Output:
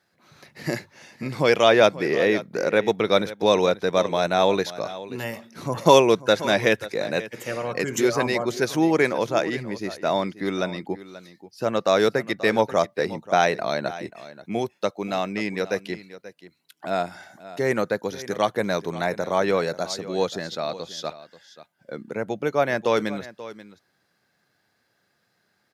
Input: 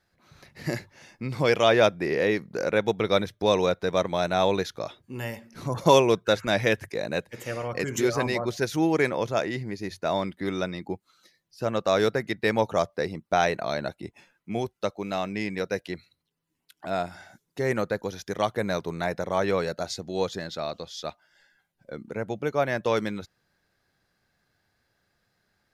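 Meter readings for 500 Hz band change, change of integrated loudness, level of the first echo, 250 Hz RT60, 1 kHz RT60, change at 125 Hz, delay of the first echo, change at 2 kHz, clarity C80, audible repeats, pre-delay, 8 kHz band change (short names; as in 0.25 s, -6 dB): +3.5 dB, +3.5 dB, -16.0 dB, none, none, -0.5 dB, 0.534 s, +3.5 dB, none, 1, none, +3.5 dB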